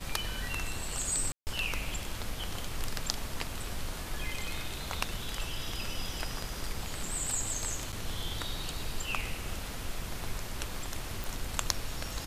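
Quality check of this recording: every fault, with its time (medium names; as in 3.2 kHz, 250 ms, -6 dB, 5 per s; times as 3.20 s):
1.32–1.47 s: dropout 149 ms
7.92–7.93 s: dropout 7.9 ms
11.24 s: pop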